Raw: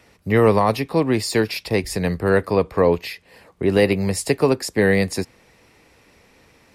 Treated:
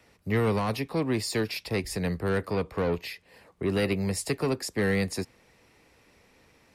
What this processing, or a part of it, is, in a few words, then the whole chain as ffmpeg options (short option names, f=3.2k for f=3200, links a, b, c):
one-band saturation: -filter_complex "[0:a]acrossover=split=280|2100[a][b][c];[b]asoftclip=type=tanh:threshold=-20dB[d];[a][d][c]amix=inputs=3:normalize=0,volume=-6.5dB"